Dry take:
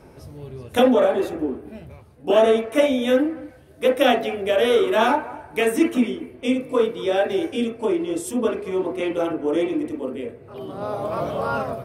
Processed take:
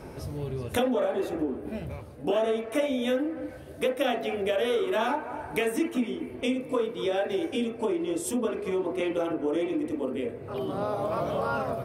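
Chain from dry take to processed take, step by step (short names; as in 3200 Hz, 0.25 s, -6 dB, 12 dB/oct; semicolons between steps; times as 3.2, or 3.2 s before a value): compressor 3:1, threshold -33 dBFS, peak gain reduction 16 dB; on a send: band-limited delay 0.15 s, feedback 83%, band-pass 580 Hz, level -23.5 dB; on the sum: gain +4.5 dB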